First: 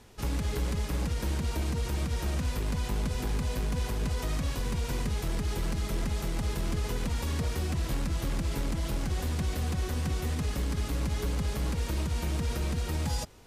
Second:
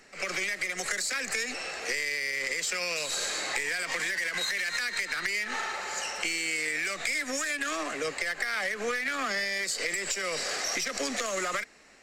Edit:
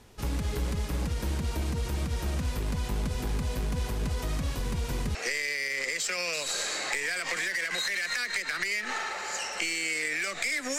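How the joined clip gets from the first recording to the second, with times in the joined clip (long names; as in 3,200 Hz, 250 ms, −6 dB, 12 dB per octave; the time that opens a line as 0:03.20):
first
0:05.15: continue with second from 0:01.78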